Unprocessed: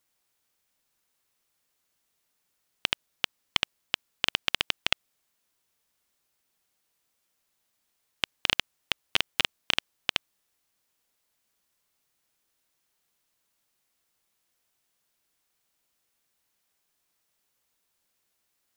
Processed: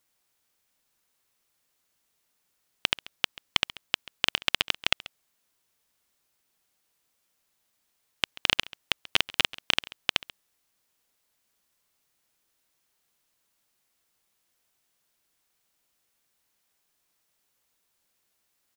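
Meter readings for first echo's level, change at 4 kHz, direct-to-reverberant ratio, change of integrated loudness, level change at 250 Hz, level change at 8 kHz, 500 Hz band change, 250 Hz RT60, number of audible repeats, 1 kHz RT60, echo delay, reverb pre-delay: −19.5 dB, +1.5 dB, no reverb audible, +1.5 dB, +1.5 dB, +1.5 dB, +1.5 dB, no reverb audible, 1, no reverb audible, 136 ms, no reverb audible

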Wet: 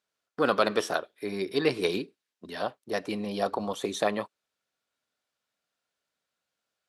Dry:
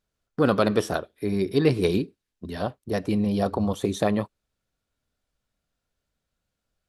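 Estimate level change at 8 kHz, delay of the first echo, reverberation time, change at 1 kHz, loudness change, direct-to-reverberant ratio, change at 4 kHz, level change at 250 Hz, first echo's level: −1.0 dB, no echo audible, no reverb audible, −0.5 dB, −4.5 dB, no reverb audible, +1.0 dB, −9.0 dB, no echo audible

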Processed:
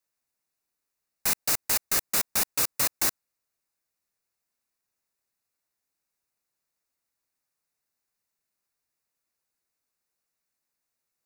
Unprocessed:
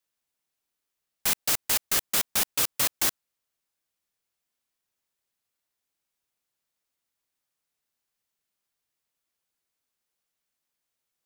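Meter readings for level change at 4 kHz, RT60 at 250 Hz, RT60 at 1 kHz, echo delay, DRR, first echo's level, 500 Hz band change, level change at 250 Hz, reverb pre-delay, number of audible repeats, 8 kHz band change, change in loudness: −2.5 dB, no reverb audible, no reverb audible, no echo audible, no reverb audible, no echo audible, 0.0 dB, 0.0 dB, no reverb audible, no echo audible, 0.0 dB, −0.5 dB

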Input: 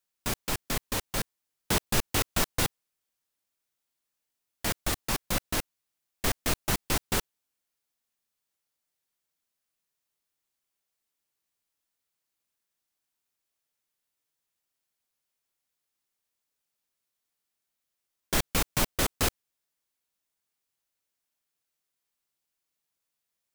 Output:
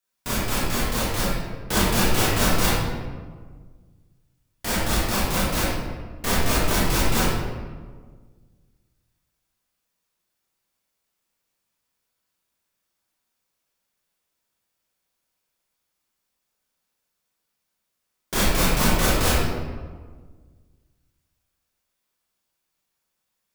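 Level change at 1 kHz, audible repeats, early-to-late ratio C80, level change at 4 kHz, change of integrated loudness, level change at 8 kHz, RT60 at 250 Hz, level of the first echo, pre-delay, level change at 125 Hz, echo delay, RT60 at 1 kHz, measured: +9.0 dB, no echo audible, 0.5 dB, +6.5 dB, +6.5 dB, +5.0 dB, 2.0 s, no echo audible, 22 ms, +10.0 dB, no echo audible, 1.5 s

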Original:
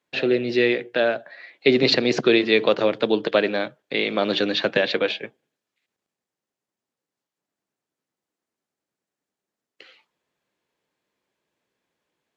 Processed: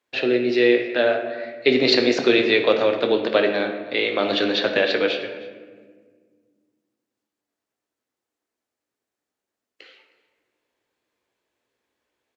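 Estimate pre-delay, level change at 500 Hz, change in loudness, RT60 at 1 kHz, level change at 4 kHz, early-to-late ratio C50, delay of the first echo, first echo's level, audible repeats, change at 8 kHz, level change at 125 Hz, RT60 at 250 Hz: 16 ms, +1.5 dB, +1.0 dB, 1.4 s, +1.0 dB, 7.0 dB, 313 ms, −21.0 dB, 1, can't be measured, −3.5 dB, 2.6 s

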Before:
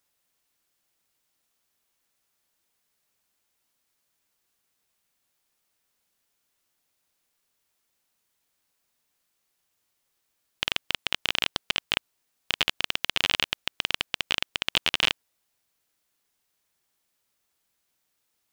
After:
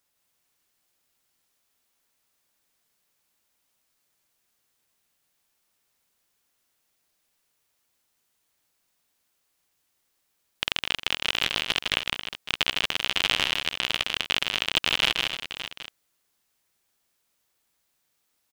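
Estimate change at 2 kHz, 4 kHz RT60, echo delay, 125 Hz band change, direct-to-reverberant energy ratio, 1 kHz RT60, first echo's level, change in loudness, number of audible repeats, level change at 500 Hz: +2.0 dB, no reverb audible, 158 ms, +2.5 dB, no reverb audible, no reverb audible, −3.5 dB, +1.5 dB, 5, +2.0 dB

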